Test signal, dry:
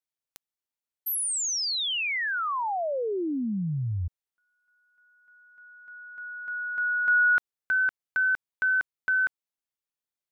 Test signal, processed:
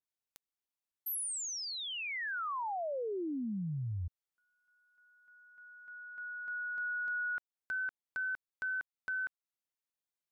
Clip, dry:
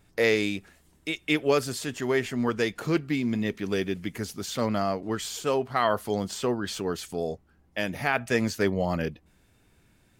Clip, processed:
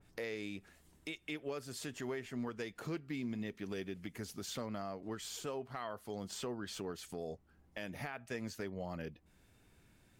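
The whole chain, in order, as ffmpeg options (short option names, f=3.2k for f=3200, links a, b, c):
-af "acompressor=threshold=-30dB:ratio=6:attack=0.4:release=353:knee=6:detection=rms,adynamicequalizer=threshold=0.00501:dfrequency=2500:dqfactor=0.7:tfrequency=2500:tqfactor=0.7:attack=5:release=100:ratio=0.375:range=3:mode=cutabove:tftype=highshelf,volume=-4dB"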